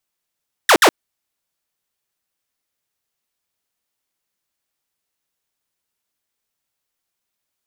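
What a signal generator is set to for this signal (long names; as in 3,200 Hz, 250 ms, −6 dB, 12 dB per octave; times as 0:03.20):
repeated falling chirps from 2,000 Hz, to 270 Hz, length 0.07 s saw, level −5 dB, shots 2, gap 0.06 s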